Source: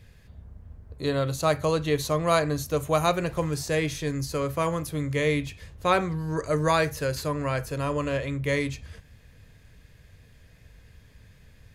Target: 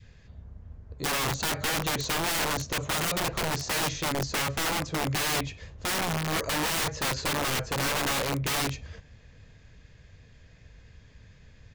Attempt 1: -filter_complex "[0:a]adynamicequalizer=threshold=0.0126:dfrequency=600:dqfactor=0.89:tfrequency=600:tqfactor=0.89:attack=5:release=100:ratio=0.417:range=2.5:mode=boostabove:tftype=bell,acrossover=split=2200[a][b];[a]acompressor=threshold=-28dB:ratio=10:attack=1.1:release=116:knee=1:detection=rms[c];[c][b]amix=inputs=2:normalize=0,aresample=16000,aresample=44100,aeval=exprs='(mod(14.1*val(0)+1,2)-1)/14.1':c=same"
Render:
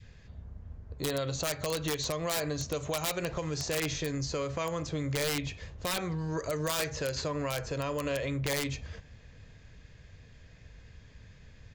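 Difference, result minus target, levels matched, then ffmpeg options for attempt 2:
compressor: peak gain reduction +9.5 dB
-filter_complex "[0:a]adynamicequalizer=threshold=0.0126:dfrequency=600:dqfactor=0.89:tfrequency=600:tqfactor=0.89:attack=5:release=100:ratio=0.417:range=2.5:mode=boostabove:tftype=bell,acrossover=split=2200[a][b];[a]acompressor=threshold=-17.5dB:ratio=10:attack=1.1:release=116:knee=1:detection=rms[c];[c][b]amix=inputs=2:normalize=0,aresample=16000,aresample=44100,aeval=exprs='(mod(14.1*val(0)+1,2)-1)/14.1':c=same"

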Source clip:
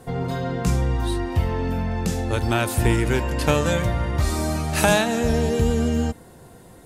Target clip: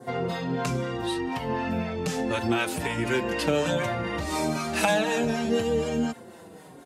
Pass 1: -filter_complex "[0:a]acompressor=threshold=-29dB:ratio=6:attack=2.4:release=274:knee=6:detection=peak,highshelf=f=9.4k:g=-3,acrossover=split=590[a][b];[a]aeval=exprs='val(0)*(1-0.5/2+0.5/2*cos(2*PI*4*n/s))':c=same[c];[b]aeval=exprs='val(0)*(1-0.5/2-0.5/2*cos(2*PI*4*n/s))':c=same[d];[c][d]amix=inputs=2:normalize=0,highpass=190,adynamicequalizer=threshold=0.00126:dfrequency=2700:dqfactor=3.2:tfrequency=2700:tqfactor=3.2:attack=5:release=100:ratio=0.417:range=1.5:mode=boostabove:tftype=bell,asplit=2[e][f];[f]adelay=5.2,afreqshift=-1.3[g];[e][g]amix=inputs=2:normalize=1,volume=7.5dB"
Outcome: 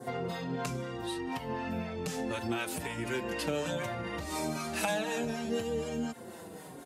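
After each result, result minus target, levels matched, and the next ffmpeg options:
compressor: peak gain reduction +9 dB; 8000 Hz band +3.0 dB
-filter_complex "[0:a]acompressor=threshold=-18.5dB:ratio=6:attack=2.4:release=274:knee=6:detection=peak,highshelf=f=9.4k:g=-3,acrossover=split=590[a][b];[a]aeval=exprs='val(0)*(1-0.5/2+0.5/2*cos(2*PI*4*n/s))':c=same[c];[b]aeval=exprs='val(0)*(1-0.5/2-0.5/2*cos(2*PI*4*n/s))':c=same[d];[c][d]amix=inputs=2:normalize=0,highpass=190,adynamicequalizer=threshold=0.00126:dfrequency=2700:dqfactor=3.2:tfrequency=2700:tqfactor=3.2:attack=5:release=100:ratio=0.417:range=1.5:mode=boostabove:tftype=bell,asplit=2[e][f];[f]adelay=5.2,afreqshift=-1.3[g];[e][g]amix=inputs=2:normalize=1,volume=7.5dB"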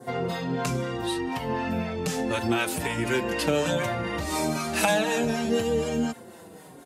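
8000 Hz band +3.0 dB
-filter_complex "[0:a]acompressor=threshold=-18.5dB:ratio=6:attack=2.4:release=274:knee=6:detection=peak,highshelf=f=9.4k:g=-11,acrossover=split=590[a][b];[a]aeval=exprs='val(0)*(1-0.5/2+0.5/2*cos(2*PI*4*n/s))':c=same[c];[b]aeval=exprs='val(0)*(1-0.5/2-0.5/2*cos(2*PI*4*n/s))':c=same[d];[c][d]amix=inputs=2:normalize=0,highpass=190,adynamicequalizer=threshold=0.00126:dfrequency=2700:dqfactor=3.2:tfrequency=2700:tqfactor=3.2:attack=5:release=100:ratio=0.417:range=1.5:mode=boostabove:tftype=bell,asplit=2[e][f];[f]adelay=5.2,afreqshift=-1.3[g];[e][g]amix=inputs=2:normalize=1,volume=7.5dB"

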